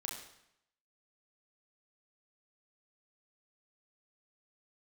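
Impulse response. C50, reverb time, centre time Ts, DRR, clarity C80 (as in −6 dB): 4.0 dB, 0.75 s, 41 ms, −0.5 dB, 6.5 dB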